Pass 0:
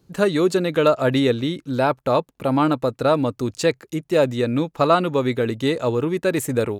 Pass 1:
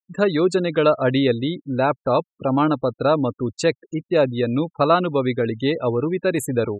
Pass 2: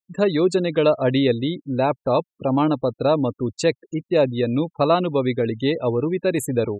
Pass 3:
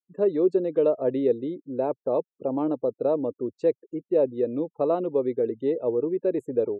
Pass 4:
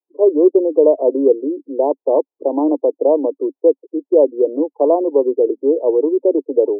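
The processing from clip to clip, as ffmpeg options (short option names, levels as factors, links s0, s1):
-af "afftfilt=real='re*gte(hypot(re,im),0.0316)':imag='im*gte(hypot(re,im),0.0316)':win_size=1024:overlap=0.75"
-af "equalizer=f=1400:w=3.4:g=-9"
-af "bandpass=f=430:t=q:w=2:csg=0,volume=0.891"
-af "acontrast=75,asuperpass=centerf=530:order=20:qfactor=0.69,volume=1.5"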